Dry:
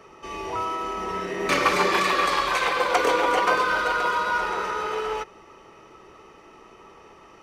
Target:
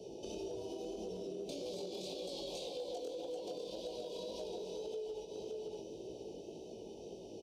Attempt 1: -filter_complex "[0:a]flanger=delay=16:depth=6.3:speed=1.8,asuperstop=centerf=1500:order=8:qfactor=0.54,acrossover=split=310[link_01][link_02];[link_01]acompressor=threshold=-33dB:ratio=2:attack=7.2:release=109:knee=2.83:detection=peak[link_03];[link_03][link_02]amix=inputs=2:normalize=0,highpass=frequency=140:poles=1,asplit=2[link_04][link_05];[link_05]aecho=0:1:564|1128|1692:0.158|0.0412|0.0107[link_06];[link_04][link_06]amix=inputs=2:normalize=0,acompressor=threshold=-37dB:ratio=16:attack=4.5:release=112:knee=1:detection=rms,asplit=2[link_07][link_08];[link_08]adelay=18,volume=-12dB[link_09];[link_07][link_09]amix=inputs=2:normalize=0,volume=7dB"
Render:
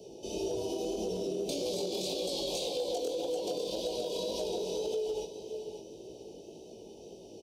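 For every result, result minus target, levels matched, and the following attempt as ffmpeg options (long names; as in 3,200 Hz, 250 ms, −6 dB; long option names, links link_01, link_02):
downward compressor: peak gain reduction −9 dB; 8,000 Hz band +2.5 dB
-filter_complex "[0:a]flanger=delay=16:depth=6.3:speed=1.8,asuperstop=centerf=1500:order=8:qfactor=0.54,acrossover=split=310[link_01][link_02];[link_01]acompressor=threshold=-33dB:ratio=2:attack=7.2:release=109:knee=2.83:detection=peak[link_03];[link_03][link_02]amix=inputs=2:normalize=0,highpass=frequency=140:poles=1,asplit=2[link_04][link_05];[link_05]aecho=0:1:564|1128|1692:0.158|0.0412|0.0107[link_06];[link_04][link_06]amix=inputs=2:normalize=0,acompressor=threshold=-46.5dB:ratio=16:attack=4.5:release=112:knee=1:detection=rms,asplit=2[link_07][link_08];[link_08]adelay=18,volume=-12dB[link_09];[link_07][link_09]amix=inputs=2:normalize=0,volume=7dB"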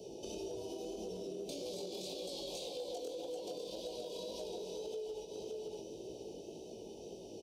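8,000 Hz band +3.5 dB
-filter_complex "[0:a]flanger=delay=16:depth=6.3:speed=1.8,asuperstop=centerf=1500:order=8:qfactor=0.54,acrossover=split=310[link_01][link_02];[link_01]acompressor=threshold=-33dB:ratio=2:attack=7.2:release=109:knee=2.83:detection=peak[link_03];[link_03][link_02]amix=inputs=2:normalize=0,highpass=frequency=140:poles=1,highshelf=frequency=7300:gain=-9.5,asplit=2[link_04][link_05];[link_05]aecho=0:1:564|1128|1692:0.158|0.0412|0.0107[link_06];[link_04][link_06]amix=inputs=2:normalize=0,acompressor=threshold=-46.5dB:ratio=16:attack=4.5:release=112:knee=1:detection=rms,asplit=2[link_07][link_08];[link_08]adelay=18,volume=-12dB[link_09];[link_07][link_09]amix=inputs=2:normalize=0,volume=7dB"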